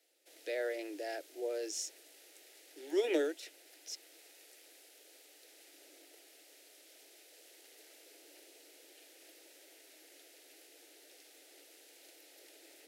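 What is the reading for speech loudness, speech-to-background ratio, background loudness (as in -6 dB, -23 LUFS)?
-38.0 LUFS, 19.5 dB, -57.5 LUFS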